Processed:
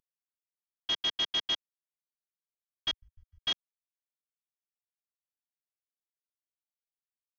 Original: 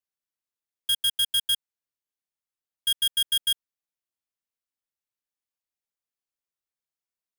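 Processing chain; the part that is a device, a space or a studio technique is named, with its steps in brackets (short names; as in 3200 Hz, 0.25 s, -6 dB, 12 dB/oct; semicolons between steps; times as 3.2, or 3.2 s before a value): early wireless headset (HPF 210 Hz 12 dB/oct; CVSD 32 kbps); 2.91–3.39 inverse Chebyshev band-stop 220–7600 Hz, stop band 50 dB; gain -4 dB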